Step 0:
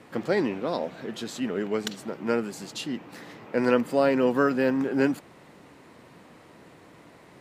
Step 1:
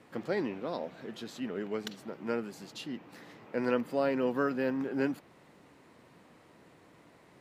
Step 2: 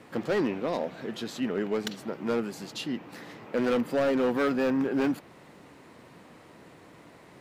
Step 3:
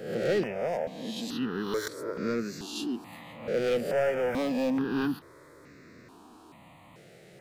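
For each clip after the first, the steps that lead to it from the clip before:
dynamic bell 8 kHz, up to -6 dB, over -57 dBFS, Q 1.5; trim -7.5 dB
hard clipper -28 dBFS, distortion -10 dB; trim +7 dB
reverse spectral sustain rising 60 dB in 0.74 s; stepped phaser 2.3 Hz 270–3100 Hz

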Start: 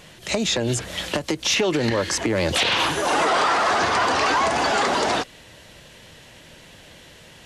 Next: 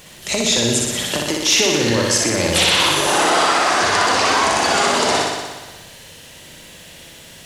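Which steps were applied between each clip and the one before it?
treble shelf 5.3 kHz +11 dB; word length cut 10-bit, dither triangular; on a send: flutter echo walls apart 10.4 m, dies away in 1.3 s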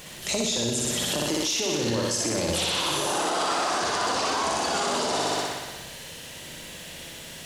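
hum notches 50/100 Hz; dynamic bell 2 kHz, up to -7 dB, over -33 dBFS, Q 1.6; peak limiter -17.5 dBFS, peak gain reduction 12.5 dB

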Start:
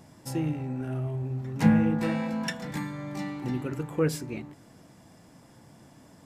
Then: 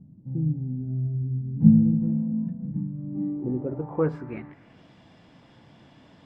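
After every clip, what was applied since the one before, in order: low-pass sweep 190 Hz -> 3.3 kHz, 2.94–4.83 s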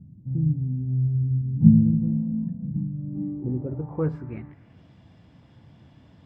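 peaking EQ 79 Hz +14.5 dB 2.2 oct; trim -5.5 dB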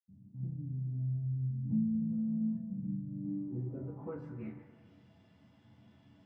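high-pass 110 Hz 12 dB/octave; compression 3:1, threshold -26 dBFS, peak gain reduction 13 dB; reverberation, pre-delay 80 ms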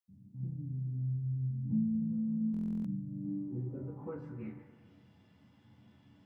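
band-stop 660 Hz, Q 14; buffer glitch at 2.52 s, samples 1024, times 13

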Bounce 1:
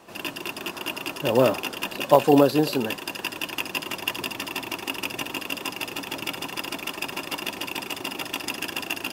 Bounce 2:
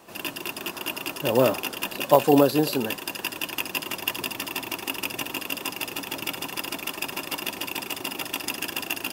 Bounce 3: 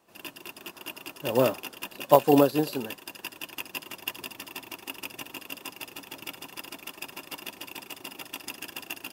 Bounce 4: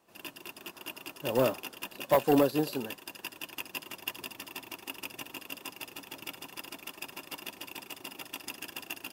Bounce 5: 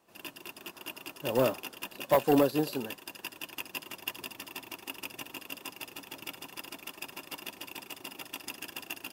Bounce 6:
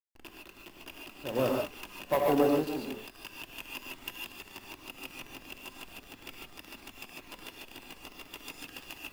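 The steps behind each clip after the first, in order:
treble shelf 10 kHz +9 dB; trim -1 dB
upward expansion 1.5:1, over -41 dBFS
saturation -12.5 dBFS, distortion -12 dB; trim -2.5 dB
no audible change
hysteresis with a dead band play -33.5 dBFS; gated-style reverb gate 170 ms rising, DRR -0.5 dB; trim -4 dB

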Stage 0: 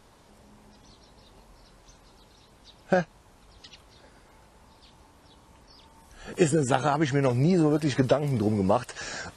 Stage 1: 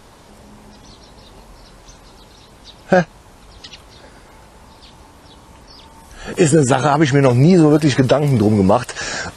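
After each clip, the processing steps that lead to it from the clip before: loudness maximiser +13 dB; trim -1 dB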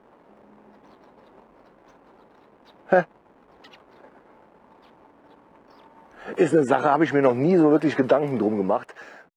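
fade out at the end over 1.06 s; hysteresis with a dead band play -39 dBFS; three-band isolator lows -23 dB, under 210 Hz, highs -17 dB, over 2.4 kHz; trim -4 dB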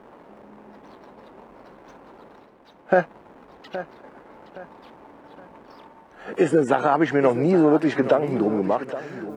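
reverse; upward compressor, threshold -38 dBFS; reverse; feedback delay 819 ms, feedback 36%, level -13 dB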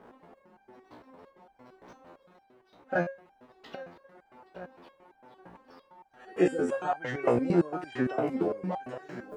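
resonator arpeggio 8.8 Hz 60–790 Hz; trim +3 dB

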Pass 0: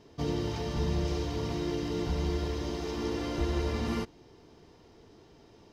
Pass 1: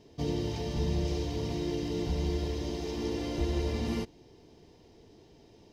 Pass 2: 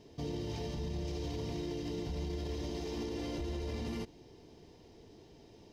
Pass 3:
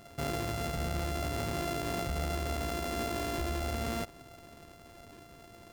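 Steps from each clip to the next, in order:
peaking EQ 1.3 kHz -10.5 dB 0.73 oct
peak limiter -30.5 dBFS, peak gain reduction 11.5 dB
sorted samples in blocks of 64 samples; trim +4 dB

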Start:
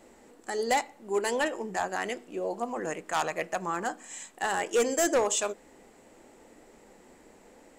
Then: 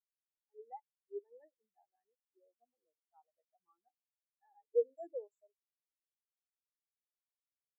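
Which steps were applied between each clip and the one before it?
spectral contrast expander 4:1; trim -1.5 dB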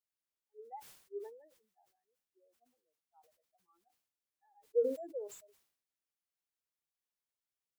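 decay stretcher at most 89 dB/s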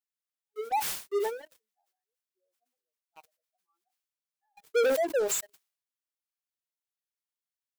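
high-pass 980 Hz 6 dB/octave; dynamic bell 1.4 kHz, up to +4 dB, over -60 dBFS, Q 0.76; waveshaping leveller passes 5; trim +6.5 dB

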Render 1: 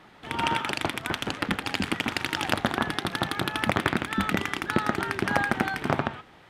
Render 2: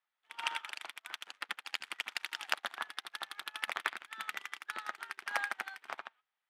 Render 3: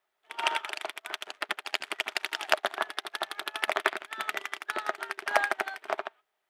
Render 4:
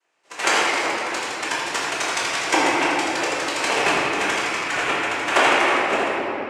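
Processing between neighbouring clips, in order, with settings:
high-pass 1.1 kHz 12 dB/octave; upward expansion 2.5:1, over -45 dBFS; trim -3 dB
small resonant body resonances 400/620 Hz, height 15 dB, ringing for 35 ms; trim +6.5 dB
noise-vocoded speech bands 4; simulated room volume 180 m³, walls hard, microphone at 1.2 m; trim +3 dB

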